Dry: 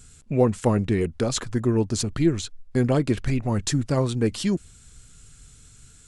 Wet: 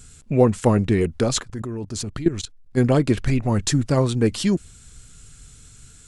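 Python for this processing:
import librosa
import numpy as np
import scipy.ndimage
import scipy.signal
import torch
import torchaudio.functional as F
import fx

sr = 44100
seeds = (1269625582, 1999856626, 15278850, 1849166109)

y = fx.level_steps(x, sr, step_db=16, at=(1.41, 2.76), fade=0.02)
y = F.gain(torch.from_numpy(y), 3.5).numpy()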